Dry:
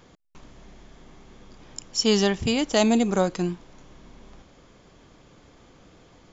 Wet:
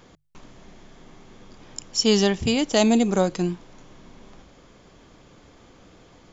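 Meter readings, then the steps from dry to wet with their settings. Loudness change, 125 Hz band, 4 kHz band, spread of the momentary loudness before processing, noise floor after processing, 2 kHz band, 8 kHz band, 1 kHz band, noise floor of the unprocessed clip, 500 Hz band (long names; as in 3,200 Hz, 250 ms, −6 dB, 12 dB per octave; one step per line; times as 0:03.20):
+1.5 dB, +2.0 dB, +1.5 dB, 19 LU, −53 dBFS, +0.5 dB, can't be measured, +0.5 dB, −55 dBFS, +1.5 dB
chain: mains-hum notches 50/100/150 Hz
dynamic equaliser 1,300 Hz, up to −3 dB, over −37 dBFS, Q 0.97
level +2 dB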